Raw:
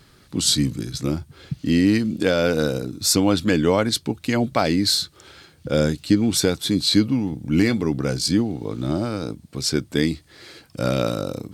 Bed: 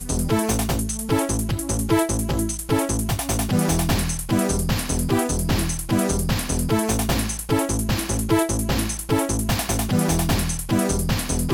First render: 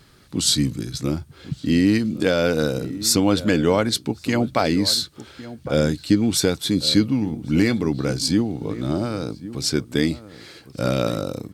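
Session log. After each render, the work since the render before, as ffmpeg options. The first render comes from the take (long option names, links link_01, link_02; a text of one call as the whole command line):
ffmpeg -i in.wav -filter_complex "[0:a]asplit=2[link_01][link_02];[link_02]adelay=1108,volume=-15dB,highshelf=frequency=4000:gain=-24.9[link_03];[link_01][link_03]amix=inputs=2:normalize=0" out.wav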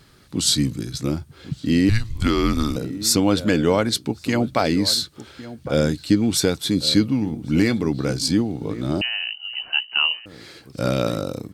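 ffmpeg -i in.wav -filter_complex "[0:a]asettb=1/sr,asplit=3[link_01][link_02][link_03];[link_01]atrim=end=1.894[link_04];[link_02]atrim=start=1.89:end=2.76,asetpts=PTS-STARTPTS,afade=type=in:duration=0.004:curve=qsin,afade=type=out:start_time=0.866:duration=0.004:curve=qsin,afreqshift=-220[link_05];[link_03]atrim=start=2.756[link_06];[link_04][link_05]acrossfade=duration=0.004:curve1=hsin:curve2=qsin[link_07];[link_07][link_06]acrossfade=duration=0.004:curve1=qsin:curve2=hsin,asettb=1/sr,asplit=3[link_08][link_09][link_10];[link_08]atrim=end=9.014[link_11];[link_09]atrim=start=9.01:end=10.26,asetpts=PTS-STARTPTS,afade=type=in:duration=0.004:curve=qsin,afade=type=out:start_time=1.246:duration=0.004:curve=qsin,lowpass=frequency=2600:width_type=q:width=0.5098,lowpass=frequency=2600:width_type=q:width=0.6013,lowpass=frequency=2600:width_type=q:width=0.9,lowpass=frequency=2600:width_type=q:width=2.563,afreqshift=-3100[link_12];[link_10]atrim=start=10.256[link_13];[link_11][link_12]acrossfade=duration=0.004:curve1=hsin:curve2=qsin[link_14];[link_14][link_13]acrossfade=duration=0.004:curve1=qsin:curve2=hsin" out.wav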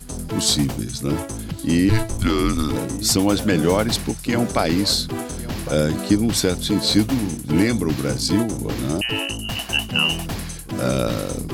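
ffmpeg -i in.wav -i bed.wav -filter_complex "[1:a]volume=-7dB[link_01];[0:a][link_01]amix=inputs=2:normalize=0" out.wav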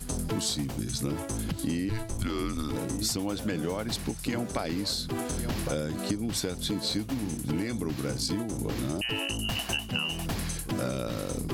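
ffmpeg -i in.wav -af "acompressor=threshold=-27dB:ratio=10" out.wav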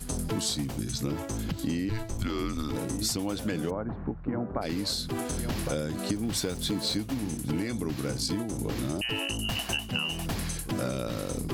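ffmpeg -i in.wav -filter_complex "[0:a]asettb=1/sr,asplit=3[link_01][link_02][link_03];[link_01]atrim=end=0.924[link_04];[link_02]atrim=start=0.92:end=2.75,asetpts=PTS-STARTPTS,afade=type=in:duration=0.004:curve=qsin,afade=type=out:start_time=1.826:duration=0.004:curve=qsin,equalizer=frequency=9800:width_type=o:width=0.26:gain=-13[link_05];[link_03]atrim=start=2.746[link_06];[link_04][link_05]acrossfade=duration=0.004:curve1=hsin:curve2=qsin[link_07];[link_07][link_06]acrossfade=duration=0.004:curve1=qsin:curve2=hsin,asplit=3[link_08][link_09][link_10];[link_08]afade=type=out:start_time=3.69:duration=0.02[link_11];[link_09]lowpass=frequency=1400:width=0.5412,lowpass=frequency=1400:width=1.3066,afade=type=in:start_time=3.69:duration=0.02,afade=type=out:start_time=4.61:duration=0.02[link_12];[link_10]afade=type=in:start_time=4.61:duration=0.02[link_13];[link_11][link_12][link_13]amix=inputs=3:normalize=0,asettb=1/sr,asplit=3[link_14][link_15][link_16];[link_14]atrim=end=6.154[link_17];[link_15]atrim=start=6.15:end=6.95,asetpts=PTS-STARTPTS,afade=type=in:duration=0.004:curve=qsin,afade=type=out:start_time=0.796:duration=0.004:curve=qsin,aeval=exprs='val(0)+0.5*0.00708*sgn(val(0))':channel_layout=same[link_18];[link_16]atrim=start=6.946[link_19];[link_17][link_18]acrossfade=duration=0.004:curve1=hsin:curve2=qsin[link_20];[link_20][link_19]acrossfade=duration=0.004:curve1=qsin:curve2=hsin" out.wav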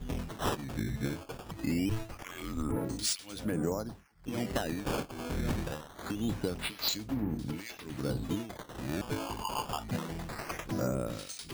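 ffmpeg -i in.wav -filter_complex "[0:a]acrossover=split=1900[link_01][link_02];[link_01]aeval=exprs='val(0)*(1-1/2+1/2*cos(2*PI*1.1*n/s))':channel_layout=same[link_03];[link_02]aeval=exprs='val(0)*(1-1/2-1/2*cos(2*PI*1.1*n/s))':channel_layout=same[link_04];[link_03][link_04]amix=inputs=2:normalize=0,acrusher=samples=13:mix=1:aa=0.000001:lfo=1:lforange=20.8:lforate=0.24" out.wav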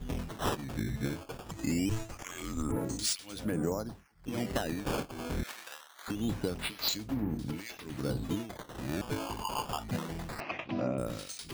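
ffmpeg -i in.wav -filter_complex "[0:a]asettb=1/sr,asplit=3[link_01][link_02][link_03];[link_01]atrim=end=1.494[link_04];[link_02]atrim=start=1.49:end=3.03,asetpts=PTS-STARTPTS,afade=type=in:duration=0.004:curve=qsin,afade=type=out:start_time=1.536:duration=0.004:curve=qsin,equalizer=frequency=7000:width=2.5:gain=10[link_05];[link_03]atrim=start=3.026[link_06];[link_04][link_05]acrossfade=duration=0.004:curve1=hsin:curve2=qsin[link_07];[link_07][link_06]acrossfade=duration=0.004:curve1=qsin:curve2=hsin,asettb=1/sr,asplit=3[link_08][link_09][link_10];[link_08]atrim=end=5.434[link_11];[link_09]atrim=start=5.43:end=6.08,asetpts=PTS-STARTPTS,afade=type=in:duration=0.004:curve=qsin,afade=type=out:start_time=0.646:duration=0.004:curve=qsin,highpass=1300[link_12];[link_10]atrim=start=6.076[link_13];[link_11][link_12]acrossfade=duration=0.004:curve1=hsin:curve2=qsin[link_14];[link_14][link_13]acrossfade=duration=0.004:curve1=qsin:curve2=hsin,asettb=1/sr,asplit=3[link_15][link_16][link_17];[link_15]atrim=end=10.404[link_18];[link_16]atrim=start=10.4:end=10.98,asetpts=PTS-STARTPTS,afade=type=in:duration=0.004:curve=qsin,afade=type=out:start_time=0.576:duration=0.004:curve=qsin,highpass=130,equalizer=frequency=170:width_type=q:width=4:gain=-5,equalizer=frequency=250:width_type=q:width=4:gain=4,equalizer=frequency=450:width_type=q:width=4:gain=-6,equalizer=frequency=670:width_type=q:width=4:gain=5,equalizer=frequency=1500:width_type=q:width=4:gain=-6,equalizer=frequency=2600:width_type=q:width=4:gain=9,lowpass=frequency=3900:width=0.5412,lowpass=frequency=3900:width=1.3066[link_19];[link_17]atrim=start=10.976[link_20];[link_18][link_19]acrossfade=duration=0.004:curve1=hsin:curve2=qsin[link_21];[link_21][link_20]acrossfade=duration=0.004:curve1=qsin:curve2=hsin" out.wav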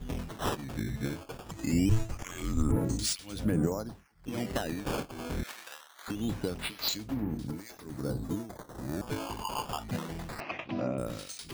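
ffmpeg -i in.wav -filter_complex "[0:a]asettb=1/sr,asplit=3[link_01][link_02][link_03];[link_01]atrim=end=1.734[link_04];[link_02]atrim=start=1.73:end=3.67,asetpts=PTS-STARTPTS,afade=type=in:duration=0.004:curve=qsin,afade=type=out:start_time=1.936:duration=0.004:curve=qsin,lowshelf=frequency=210:gain=10.5[link_05];[link_03]atrim=start=3.666[link_06];[link_04][link_05]acrossfade=duration=0.004:curve1=hsin:curve2=qsin[link_07];[link_07][link_06]acrossfade=duration=0.004:curve1=qsin:curve2=hsin,asettb=1/sr,asplit=3[link_08][link_09][link_10];[link_08]atrim=end=7.474[link_11];[link_09]atrim=start=7.47:end=9.07,asetpts=PTS-STARTPTS,afade=type=in:duration=0.004:curve=qsin,afade=type=out:start_time=1.596:duration=0.004:curve=qsin,equalizer=frequency=2800:width=1.5:gain=-14[link_12];[link_10]atrim=start=9.066[link_13];[link_11][link_12]acrossfade=duration=0.004:curve1=hsin:curve2=qsin[link_14];[link_14][link_13]acrossfade=duration=0.004:curve1=qsin:curve2=hsin" out.wav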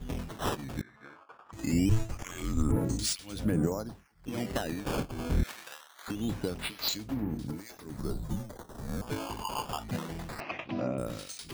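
ffmpeg -i in.wav -filter_complex "[0:a]asettb=1/sr,asplit=3[link_01][link_02][link_03];[link_01]atrim=end=0.814[link_04];[link_02]atrim=start=0.81:end=1.53,asetpts=PTS-STARTPTS,afade=type=in:duration=0.004:curve=qsin,afade=type=out:start_time=0.716:duration=0.004:curve=qsin,bandpass=frequency=1200:width_type=q:width=2.7[link_05];[link_03]atrim=start=1.526[link_06];[link_04][link_05]acrossfade=duration=0.004:curve1=hsin:curve2=qsin[link_07];[link_07][link_06]acrossfade=duration=0.004:curve1=qsin:curve2=hsin,asettb=1/sr,asplit=3[link_08][link_09][link_10];[link_08]atrim=end=4.964[link_11];[link_09]atrim=start=4.96:end=5.74,asetpts=PTS-STARTPTS,afade=type=in:duration=0.004:curve=qsin,afade=type=out:start_time=0.776:duration=0.004:curve=qsin,lowshelf=frequency=190:gain=10.5[link_12];[link_10]atrim=start=5.736[link_13];[link_11][link_12]acrossfade=duration=0.004:curve1=hsin:curve2=qsin[link_14];[link_14][link_13]acrossfade=duration=0.004:curve1=qsin:curve2=hsin,asettb=1/sr,asplit=3[link_15][link_16][link_17];[link_15]atrim=end=7.974[link_18];[link_16]atrim=start=7.97:end=9.04,asetpts=PTS-STARTPTS,afade=type=in:duration=0.004:curve=qsin,afade=type=out:start_time=1.066:duration=0.004:curve=qsin,afreqshift=-110[link_19];[link_17]atrim=start=9.036[link_20];[link_18][link_19]acrossfade=duration=0.004:curve1=hsin:curve2=qsin[link_21];[link_21][link_20]acrossfade=duration=0.004:curve1=qsin:curve2=hsin" out.wav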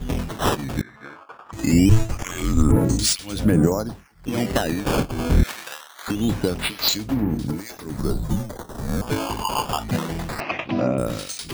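ffmpeg -i in.wav -af "volume=11dB" out.wav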